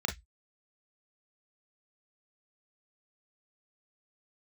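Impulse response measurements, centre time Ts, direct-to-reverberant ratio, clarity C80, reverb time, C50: 15 ms, 3.0 dB, 25.0 dB, 0.10 s, 12.5 dB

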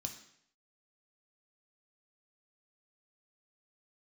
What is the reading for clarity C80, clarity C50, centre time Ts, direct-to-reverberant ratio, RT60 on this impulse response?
12.0 dB, 9.0 dB, 17 ms, 3.0 dB, 0.70 s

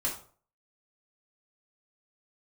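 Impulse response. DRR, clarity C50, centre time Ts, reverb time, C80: −4.5 dB, 7.5 dB, 24 ms, 0.45 s, 12.5 dB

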